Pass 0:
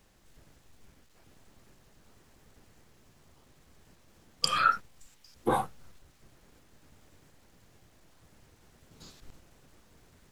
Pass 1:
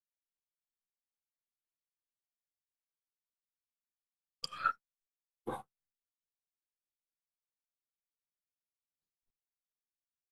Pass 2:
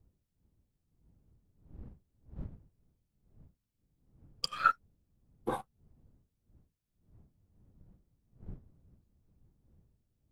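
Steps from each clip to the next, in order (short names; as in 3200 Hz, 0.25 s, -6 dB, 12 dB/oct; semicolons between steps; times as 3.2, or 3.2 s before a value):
upward expander 2.5:1, over -54 dBFS; gain -6.5 dB
wind noise 120 Hz -60 dBFS; in parallel at -4 dB: crossover distortion -52.5 dBFS; on the sum: gain +2 dB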